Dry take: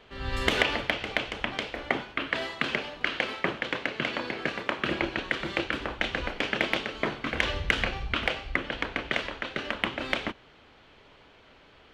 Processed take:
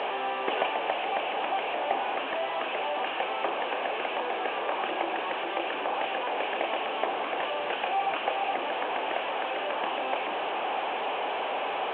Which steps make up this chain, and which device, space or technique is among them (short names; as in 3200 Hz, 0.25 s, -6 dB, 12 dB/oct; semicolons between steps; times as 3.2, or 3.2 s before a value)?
digital answering machine (BPF 330–3100 Hz; delta modulation 16 kbps, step -24.5 dBFS; speaker cabinet 430–3600 Hz, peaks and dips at 770 Hz +8 dB, 1400 Hz -9 dB, 2000 Hz -10 dB); gain +1.5 dB